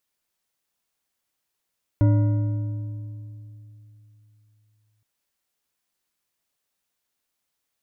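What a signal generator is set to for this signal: metal hit bar, length 3.02 s, lowest mode 107 Hz, modes 6, decay 3.37 s, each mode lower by 8 dB, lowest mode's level -13.5 dB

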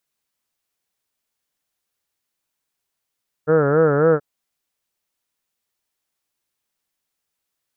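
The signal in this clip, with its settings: formant-synthesis vowel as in heard, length 0.73 s, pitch 149 Hz, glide +0.5 st, vibrato 3.7 Hz, vibrato depth 1.3 st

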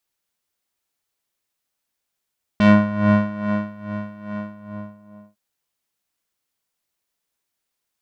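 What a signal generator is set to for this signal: synth patch with tremolo G#3, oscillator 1 square, interval -12 st, detune 19 cents, oscillator 2 level -12 dB, sub -8.5 dB, filter lowpass, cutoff 840 Hz, Q 1.1, filter envelope 2 oct, filter decay 0.15 s, filter sustain 45%, attack 1.4 ms, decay 1.17 s, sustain -16.5 dB, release 1.02 s, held 1.74 s, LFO 2.4 Hz, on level 14 dB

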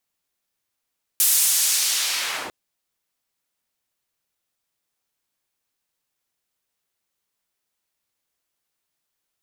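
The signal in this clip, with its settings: swept filtered noise white, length 1.30 s bandpass, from 11000 Hz, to 310 Hz, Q 0.78, linear, gain ramp -7 dB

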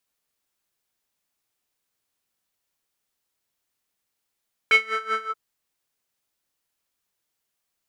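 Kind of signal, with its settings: synth patch with tremolo A4, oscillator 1 square, interval -12 st, detune 27 cents, filter bandpass, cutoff 1200 Hz, Q 5.9, filter envelope 1 oct, attack 1 ms, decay 0.07 s, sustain -11 dB, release 0.09 s, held 0.54 s, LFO 5.3 Hz, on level 17.5 dB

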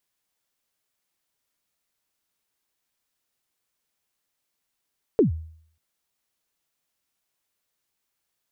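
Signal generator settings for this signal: kick drum length 0.59 s, from 490 Hz, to 80 Hz, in 0.123 s, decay 0.59 s, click off, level -11.5 dB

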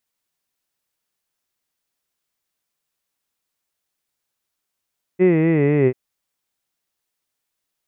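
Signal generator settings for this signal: formant-synthesis vowel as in hid, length 0.74 s, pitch 180 Hz, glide -5.5 st, vibrato 4 Hz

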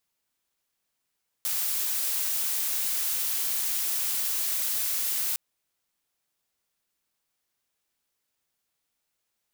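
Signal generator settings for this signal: noise blue, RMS -28 dBFS 3.91 s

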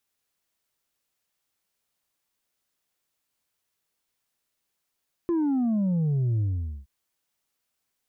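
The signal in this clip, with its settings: sub drop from 350 Hz, over 1.57 s, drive 3 dB, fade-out 0.46 s, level -22 dB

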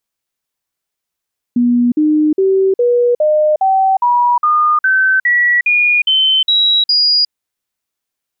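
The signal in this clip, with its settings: stepped sine 242 Hz up, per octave 3, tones 14, 0.36 s, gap 0.05 s -8.5 dBFS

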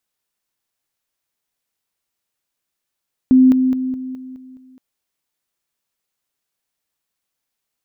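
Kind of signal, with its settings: level ladder 258 Hz -6.5 dBFS, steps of -6 dB, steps 7, 0.21 s 0.00 s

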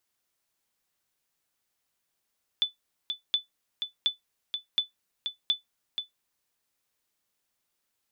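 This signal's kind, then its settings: sonar ping 3490 Hz, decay 0.14 s, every 0.72 s, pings 5, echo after 0.48 s, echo -7 dB -16 dBFS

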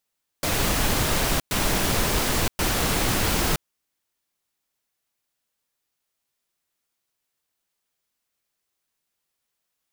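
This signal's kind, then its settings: noise bursts pink, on 0.97 s, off 0.11 s, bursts 3, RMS -22.5 dBFS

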